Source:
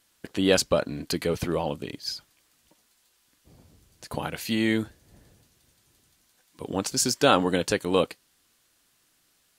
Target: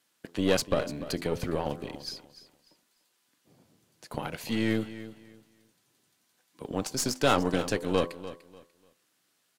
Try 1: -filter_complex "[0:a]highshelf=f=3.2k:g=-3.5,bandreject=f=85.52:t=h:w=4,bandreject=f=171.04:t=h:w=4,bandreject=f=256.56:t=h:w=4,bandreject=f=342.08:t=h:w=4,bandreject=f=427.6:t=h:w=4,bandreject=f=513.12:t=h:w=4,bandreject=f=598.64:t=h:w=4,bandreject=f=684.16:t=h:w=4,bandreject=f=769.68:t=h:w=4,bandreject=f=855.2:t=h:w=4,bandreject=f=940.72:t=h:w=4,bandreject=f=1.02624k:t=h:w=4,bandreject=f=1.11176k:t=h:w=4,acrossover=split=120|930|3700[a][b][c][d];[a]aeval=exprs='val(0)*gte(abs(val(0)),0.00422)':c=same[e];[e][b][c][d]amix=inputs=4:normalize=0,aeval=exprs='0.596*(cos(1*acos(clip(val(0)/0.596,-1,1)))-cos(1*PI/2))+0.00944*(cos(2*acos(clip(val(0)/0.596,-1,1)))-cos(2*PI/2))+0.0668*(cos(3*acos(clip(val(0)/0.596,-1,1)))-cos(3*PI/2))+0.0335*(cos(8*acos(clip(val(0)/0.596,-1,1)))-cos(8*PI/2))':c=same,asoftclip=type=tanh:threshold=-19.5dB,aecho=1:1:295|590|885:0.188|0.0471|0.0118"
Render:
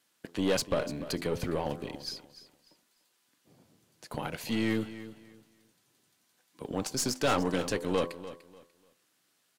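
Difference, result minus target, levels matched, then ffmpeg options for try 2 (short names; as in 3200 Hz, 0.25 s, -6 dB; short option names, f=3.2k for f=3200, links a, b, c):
soft clip: distortion +9 dB
-filter_complex "[0:a]highshelf=f=3.2k:g=-3.5,bandreject=f=85.52:t=h:w=4,bandreject=f=171.04:t=h:w=4,bandreject=f=256.56:t=h:w=4,bandreject=f=342.08:t=h:w=4,bandreject=f=427.6:t=h:w=4,bandreject=f=513.12:t=h:w=4,bandreject=f=598.64:t=h:w=4,bandreject=f=684.16:t=h:w=4,bandreject=f=769.68:t=h:w=4,bandreject=f=855.2:t=h:w=4,bandreject=f=940.72:t=h:w=4,bandreject=f=1.02624k:t=h:w=4,bandreject=f=1.11176k:t=h:w=4,acrossover=split=120|930|3700[a][b][c][d];[a]aeval=exprs='val(0)*gte(abs(val(0)),0.00422)':c=same[e];[e][b][c][d]amix=inputs=4:normalize=0,aeval=exprs='0.596*(cos(1*acos(clip(val(0)/0.596,-1,1)))-cos(1*PI/2))+0.00944*(cos(2*acos(clip(val(0)/0.596,-1,1)))-cos(2*PI/2))+0.0668*(cos(3*acos(clip(val(0)/0.596,-1,1)))-cos(3*PI/2))+0.0335*(cos(8*acos(clip(val(0)/0.596,-1,1)))-cos(8*PI/2))':c=same,asoftclip=type=tanh:threshold=-11dB,aecho=1:1:295|590|885:0.188|0.0471|0.0118"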